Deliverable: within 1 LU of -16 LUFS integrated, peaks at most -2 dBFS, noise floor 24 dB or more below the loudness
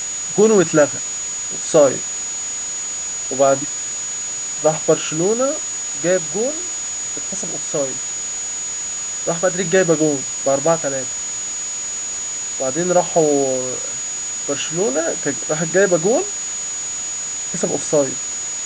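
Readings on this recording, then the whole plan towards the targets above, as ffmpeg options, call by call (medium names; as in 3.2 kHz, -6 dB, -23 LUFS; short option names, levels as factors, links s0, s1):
steady tone 6.8 kHz; tone level -23 dBFS; noise floor -26 dBFS; noise floor target -43 dBFS; loudness -19.0 LUFS; peak level -1.5 dBFS; loudness target -16.0 LUFS
-> -af "bandreject=f=6800:w=30"
-af "afftdn=nr=17:nf=-26"
-af "volume=1.41,alimiter=limit=0.794:level=0:latency=1"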